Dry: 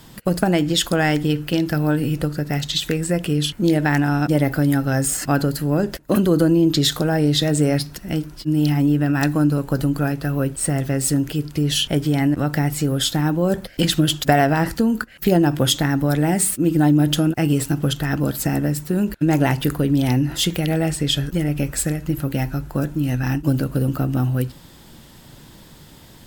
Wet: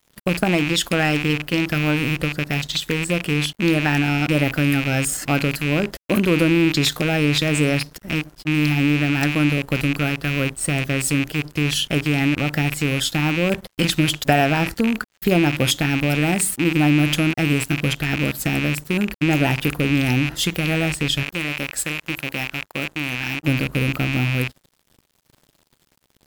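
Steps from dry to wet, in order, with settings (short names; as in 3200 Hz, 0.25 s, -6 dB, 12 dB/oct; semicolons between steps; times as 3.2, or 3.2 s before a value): rattling part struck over -26 dBFS, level -12 dBFS; 21.23–23.43 low shelf 240 Hz -12 dB; crossover distortion -39.5 dBFS; gain -1 dB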